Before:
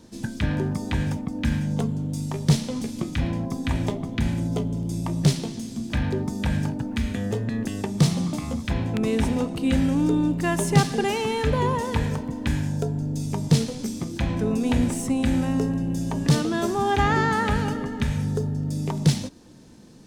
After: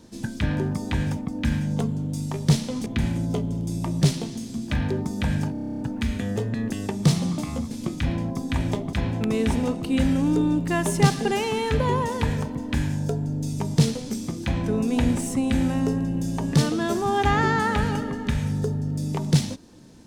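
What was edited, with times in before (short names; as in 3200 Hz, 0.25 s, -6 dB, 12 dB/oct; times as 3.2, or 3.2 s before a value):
2.86–4.08 move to 8.66
6.74 stutter 0.03 s, 10 plays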